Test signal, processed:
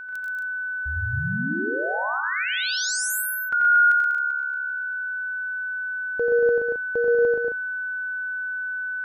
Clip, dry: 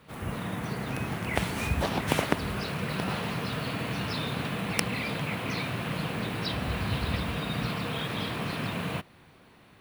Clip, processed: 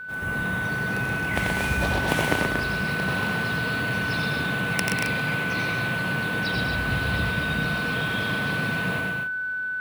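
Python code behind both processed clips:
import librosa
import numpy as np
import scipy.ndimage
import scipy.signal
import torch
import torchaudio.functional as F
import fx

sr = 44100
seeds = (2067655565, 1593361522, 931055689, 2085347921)

y = x + 10.0 ** (-34.0 / 20.0) * np.sin(2.0 * np.pi * 1500.0 * np.arange(len(x)) / sr)
y = fx.echo_multitap(y, sr, ms=(88, 105, 126, 195, 232, 268), db=(-4.5, -13.5, -4.5, -9.5, -5.5, -10.0))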